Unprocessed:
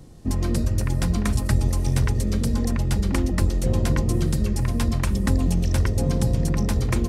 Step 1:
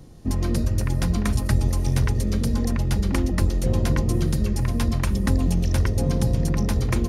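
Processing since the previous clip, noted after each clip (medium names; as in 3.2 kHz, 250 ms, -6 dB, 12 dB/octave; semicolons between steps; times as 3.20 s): band-stop 7.9 kHz, Q 7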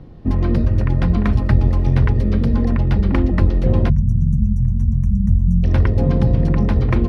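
time-frequency box 3.89–5.64 s, 220–5600 Hz -29 dB; distance through air 360 m; trim +6.5 dB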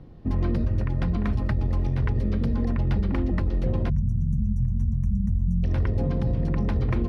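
peak limiter -9 dBFS, peak gain reduction 7 dB; trim -6.5 dB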